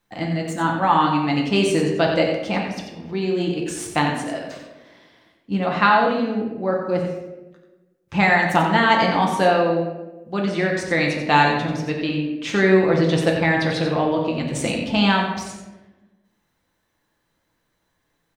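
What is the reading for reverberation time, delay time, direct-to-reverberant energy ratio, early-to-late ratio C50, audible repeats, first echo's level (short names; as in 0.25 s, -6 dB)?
1.1 s, 90 ms, -1.0 dB, 3.5 dB, 1, -8.5 dB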